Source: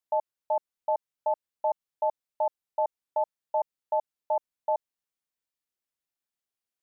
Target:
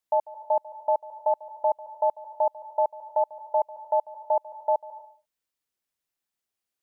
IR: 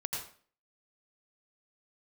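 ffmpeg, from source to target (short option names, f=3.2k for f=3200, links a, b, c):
-filter_complex "[0:a]asplit=2[a][b];[1:a]atrim=start_sample=2205,afade=t=out:st=0.4:d=0.01,atrim=end_sample=18081,adelay=145[c];[b][c]afir=irnorm=-1:irlink=0,volume=-18dB[d];[a][d]amix=inputs=2:normalize=0,volume=3.5dB"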